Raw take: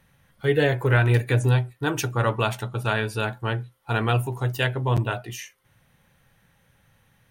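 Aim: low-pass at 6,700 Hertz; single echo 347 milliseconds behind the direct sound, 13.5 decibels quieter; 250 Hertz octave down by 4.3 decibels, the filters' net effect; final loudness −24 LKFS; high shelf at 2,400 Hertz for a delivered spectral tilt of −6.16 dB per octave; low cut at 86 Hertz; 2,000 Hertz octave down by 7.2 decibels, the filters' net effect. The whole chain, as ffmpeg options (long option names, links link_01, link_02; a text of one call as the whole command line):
ffmpeg -i in.wav -af "highpass=86,lowpass=6700,equalizer=frequency=250:width_type=o:gain=-6.5,equalizer=frequency=2000:width_type=o:gain=-7.5,highshelf=frequency=2400:gain=-5.5,aecho=1:1:347:0.211,volume=3dB" out.wav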